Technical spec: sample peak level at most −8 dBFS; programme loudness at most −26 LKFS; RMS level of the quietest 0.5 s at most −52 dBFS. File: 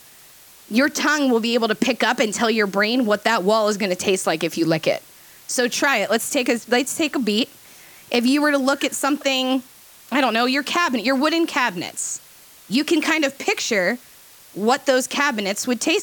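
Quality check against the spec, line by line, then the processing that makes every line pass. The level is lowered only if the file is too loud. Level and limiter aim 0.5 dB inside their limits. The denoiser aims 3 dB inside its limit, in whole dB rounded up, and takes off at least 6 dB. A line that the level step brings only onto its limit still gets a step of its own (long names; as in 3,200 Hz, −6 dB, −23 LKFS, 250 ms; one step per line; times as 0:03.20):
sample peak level −5.0 dBFS: out of spec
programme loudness −20.0 LKFS: out of spec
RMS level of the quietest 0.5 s −47 dBFS: out of spec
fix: level −6.5 dB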